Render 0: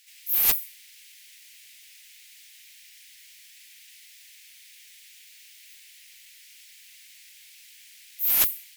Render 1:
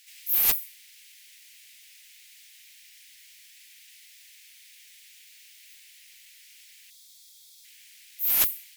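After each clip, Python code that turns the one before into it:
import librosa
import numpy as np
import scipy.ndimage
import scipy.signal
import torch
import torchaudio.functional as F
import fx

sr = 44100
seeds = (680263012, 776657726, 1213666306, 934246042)

y = fx.spec_box(x, sr, start_s=6.9, length_s=0.74, low_hz=710.0, high_hz=3200.0, gain_db=-16)
y = fx.rider(y, sr, range_db=10, speed_s=0.5)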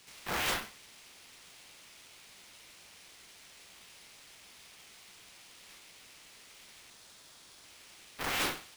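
y = fx.sample_hold(x, sr, seeds[0], rate_hz=15000.0, jitter_pct=0)
y = fx.tube_stage(y, sr, drive_db=28.0, bias=0.6)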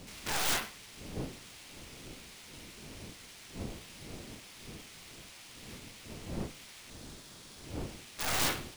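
y = fx.dmg_wind(x, sr, seeds[1], corner_hz=300.0, level_db=-50.0)
y = (np.mod(10.0 ** (27.5 / 20.0) * y + 1.0, 2.0) - 1.0) / 10.0 ** (27.5 / 20.0)
y = F.gain(torch.from_numpy(y), 3.5).numpy()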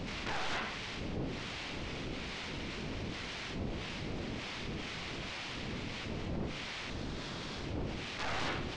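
y = scipy.ndimage.gaussian_filter1d(x, 1.9, mode='constant')
y = fx.env_flatten(y, sr, amount_pct=70)
y = F.gain(torch.from_numpy(y), -4.0).numpy()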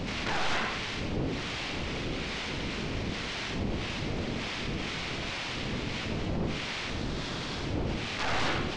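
y = x + 10.0 ** (-7.5 / 20.0) * np.pad(x, (int(87 * sr / 1000.0), 0))[:len(x)]
y = F.gain(torch.from_numpy(y), 6.0).numpy()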